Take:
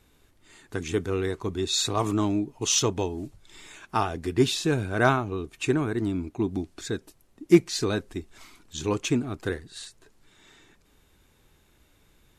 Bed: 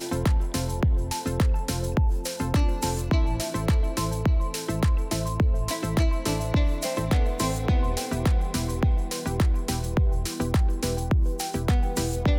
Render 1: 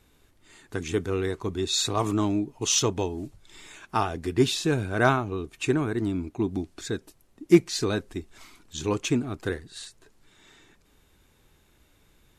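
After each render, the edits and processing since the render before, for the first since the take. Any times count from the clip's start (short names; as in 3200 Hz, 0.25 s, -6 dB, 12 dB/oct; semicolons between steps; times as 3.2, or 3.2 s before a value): nothing audible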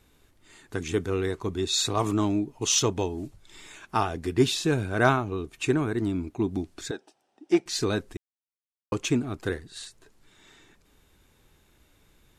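6.91–7.66 speaker cabinet 410–7400 Hz, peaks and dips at 480 Hz -3 dB, 780 Hz +10 dB, 1100 Hz -7 dB, 2100 Hz -7 dB, 4200 Hz -6 dB, 6900 Hz -9 dB; 8.17–8.92 mute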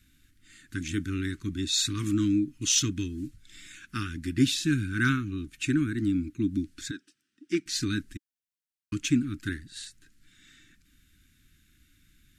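Chebyshev band-stop 290–1500 Hz, order 3; dynamic EQ 300 Hz, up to +5 dB, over -43 dBFS, Q 4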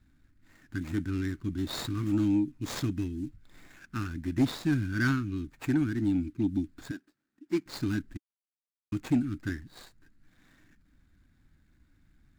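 median filter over 15 samples; soft clip -16.5 dBFS, distortion -20 dB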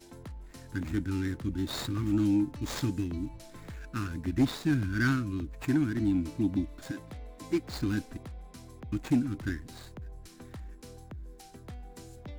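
add bed -21.5 dB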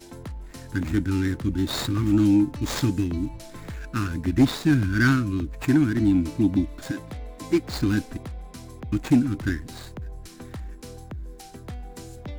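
gain +7.5 dB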